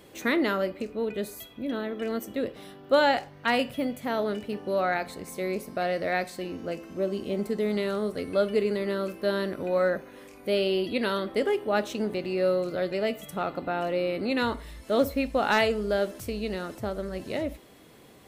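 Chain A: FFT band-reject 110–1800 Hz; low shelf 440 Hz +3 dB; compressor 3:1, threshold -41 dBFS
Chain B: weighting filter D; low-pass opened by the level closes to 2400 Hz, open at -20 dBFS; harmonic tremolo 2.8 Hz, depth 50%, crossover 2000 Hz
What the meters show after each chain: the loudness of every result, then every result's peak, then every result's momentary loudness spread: -44.0, -28.0 LUFS; -26.5, -5.5 dBFS; 7, 12 LU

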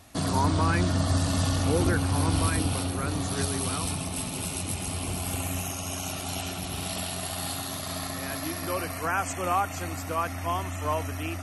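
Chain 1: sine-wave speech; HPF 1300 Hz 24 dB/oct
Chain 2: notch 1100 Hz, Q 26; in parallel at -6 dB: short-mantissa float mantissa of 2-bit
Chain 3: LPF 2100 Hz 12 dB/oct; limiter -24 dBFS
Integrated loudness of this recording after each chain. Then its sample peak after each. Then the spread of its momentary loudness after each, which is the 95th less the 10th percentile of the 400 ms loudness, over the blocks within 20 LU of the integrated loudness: -34.0, -25.0, -34.0 LUFS; -16.0, -8.5, -24.0 dBFS; 14, 8, 4 LU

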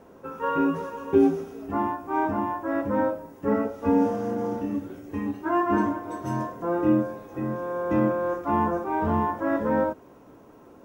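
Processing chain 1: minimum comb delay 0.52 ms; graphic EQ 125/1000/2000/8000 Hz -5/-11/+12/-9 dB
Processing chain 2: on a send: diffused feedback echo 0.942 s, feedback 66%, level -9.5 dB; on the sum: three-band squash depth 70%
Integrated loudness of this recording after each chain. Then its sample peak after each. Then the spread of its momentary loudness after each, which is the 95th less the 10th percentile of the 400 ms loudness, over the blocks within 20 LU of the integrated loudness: -27.0, -25.5 LUFS; -10.0, -11.0 dBFS; 10, 4 LU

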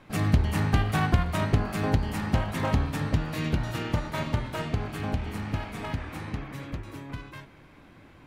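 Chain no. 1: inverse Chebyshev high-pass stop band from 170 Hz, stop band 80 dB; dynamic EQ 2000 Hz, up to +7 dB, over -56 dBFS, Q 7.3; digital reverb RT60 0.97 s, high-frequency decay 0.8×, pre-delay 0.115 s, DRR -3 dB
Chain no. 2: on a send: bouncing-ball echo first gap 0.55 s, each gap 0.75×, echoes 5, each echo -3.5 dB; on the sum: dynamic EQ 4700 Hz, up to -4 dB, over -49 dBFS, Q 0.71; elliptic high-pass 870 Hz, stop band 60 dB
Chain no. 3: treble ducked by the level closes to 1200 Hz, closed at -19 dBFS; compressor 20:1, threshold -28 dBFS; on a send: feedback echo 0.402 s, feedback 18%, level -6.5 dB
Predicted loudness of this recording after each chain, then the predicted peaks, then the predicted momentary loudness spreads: -31.5, -36.0, -34.0 LUFS; -15.0, -18.0, -18.0 dBFS; 15, 11, 6 LU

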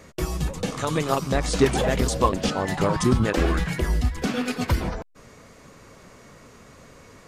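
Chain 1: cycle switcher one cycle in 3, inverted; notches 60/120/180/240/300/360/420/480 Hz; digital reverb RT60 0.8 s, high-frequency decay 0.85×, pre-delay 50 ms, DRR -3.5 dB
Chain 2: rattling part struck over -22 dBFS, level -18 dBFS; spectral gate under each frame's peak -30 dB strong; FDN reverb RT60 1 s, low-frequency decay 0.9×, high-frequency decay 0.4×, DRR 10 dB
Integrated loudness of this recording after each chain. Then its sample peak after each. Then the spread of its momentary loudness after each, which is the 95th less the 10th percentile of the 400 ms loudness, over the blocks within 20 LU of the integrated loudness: -20.0, -23.5 LUFS; -3.5, -6.0 dBFS; 8, 7 LU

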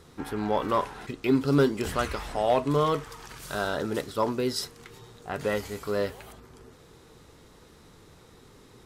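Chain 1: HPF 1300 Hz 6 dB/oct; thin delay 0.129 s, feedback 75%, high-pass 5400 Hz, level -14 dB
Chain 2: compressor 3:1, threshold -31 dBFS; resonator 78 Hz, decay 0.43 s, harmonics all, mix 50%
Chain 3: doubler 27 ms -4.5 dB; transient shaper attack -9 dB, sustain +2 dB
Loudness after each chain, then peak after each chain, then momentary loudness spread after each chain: -35.0, -39.5, -28.5 LUFS; -15.5, -22.5, -11.5 dBFS; 13, 21, 16 LU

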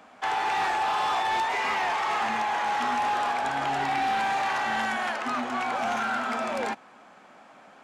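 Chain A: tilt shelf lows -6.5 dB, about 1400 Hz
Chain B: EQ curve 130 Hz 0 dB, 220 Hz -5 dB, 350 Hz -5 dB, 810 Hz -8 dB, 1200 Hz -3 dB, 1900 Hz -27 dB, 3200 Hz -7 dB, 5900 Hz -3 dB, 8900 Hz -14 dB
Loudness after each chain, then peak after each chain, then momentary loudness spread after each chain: -27.5, -34.5 LUFS; -17.5, -24.0 dBFS; 4, 4 LU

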